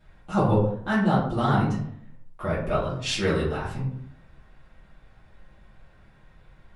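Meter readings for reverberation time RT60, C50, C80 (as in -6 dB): 0.65 s, 3.5 dB, 8.0 dB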